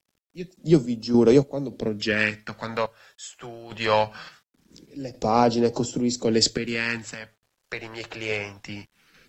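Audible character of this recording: phasing stages 2, 0.22 Hz, lowest notch 230–1800 Hz; random-step tremolo, depth 80%; a quantiser's noise floor 12-bit, dither none; AAC

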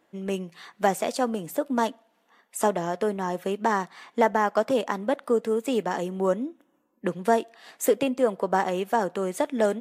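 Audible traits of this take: noise floor -69 dBFS; spectral tilt -5.0 dB/oct

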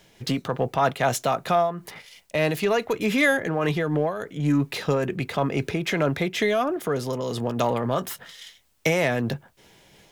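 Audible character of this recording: a quantiser's noise floor 12-bit, dither triangular; noise-modulated level

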